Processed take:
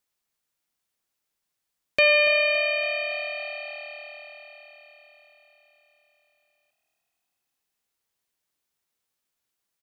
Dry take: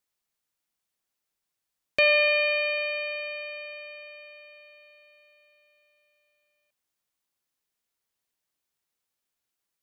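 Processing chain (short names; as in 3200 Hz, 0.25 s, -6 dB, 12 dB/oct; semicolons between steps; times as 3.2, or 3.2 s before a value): frequency-shifting echo 0.281 s, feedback 58%, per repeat +39 Hz, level -14 dB; gain +2 dB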